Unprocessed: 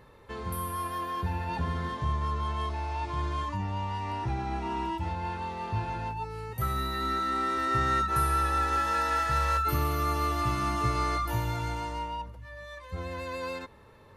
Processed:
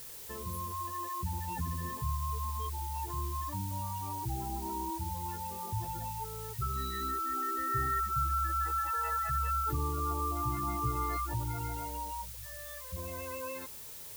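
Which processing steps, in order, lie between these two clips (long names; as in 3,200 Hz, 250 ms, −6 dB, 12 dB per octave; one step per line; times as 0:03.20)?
gate on every frequency bin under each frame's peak −15 dB strong
background noise blue −42 dBFS
level −4.5 dB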